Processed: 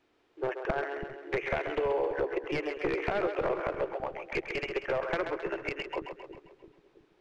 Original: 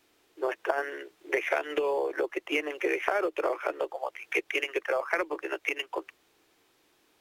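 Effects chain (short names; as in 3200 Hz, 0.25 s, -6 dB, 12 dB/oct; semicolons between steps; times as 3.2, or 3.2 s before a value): one-sided fold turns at -23 dBFS; tape spacing loss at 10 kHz 23 dB; on a send: split-band echo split 370 Hz, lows 0.33 s, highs 0.133 s, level -7 dB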